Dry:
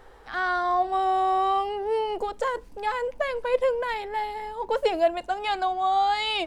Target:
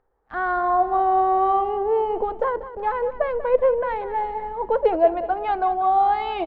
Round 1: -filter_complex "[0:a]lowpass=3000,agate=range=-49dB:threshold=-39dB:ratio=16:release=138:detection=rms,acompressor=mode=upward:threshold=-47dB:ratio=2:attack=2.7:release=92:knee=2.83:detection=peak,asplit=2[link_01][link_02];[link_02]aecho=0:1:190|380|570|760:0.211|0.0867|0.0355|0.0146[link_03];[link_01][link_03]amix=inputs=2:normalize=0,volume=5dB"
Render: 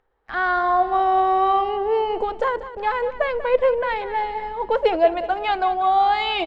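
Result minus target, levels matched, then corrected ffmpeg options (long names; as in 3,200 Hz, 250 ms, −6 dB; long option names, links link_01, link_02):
4,000 Hz band +12.5 dB
-filter_complex "[0:a]lowpass=1200,agate=range=-49dB:threshold=-39dB:ratio=16:release=138:detection=rms,acompressor=mode=upward:threshold=-47dB:ratio=2:attack=2.7:release=92:knee=2.83:detection=peak,asplit=2[link_01][link_02];[link_02]aecho=0:1:190|380|570|760:0.211|0.0867|0.0355|0.0146[link_03];[link_01][link_03]amix=inputs=2:normalize=0,volume=5dB"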